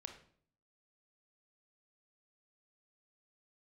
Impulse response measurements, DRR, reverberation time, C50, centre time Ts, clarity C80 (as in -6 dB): 5.0 dB, 0.55 s, 8.0 dB, 16 ms, 12.0 dB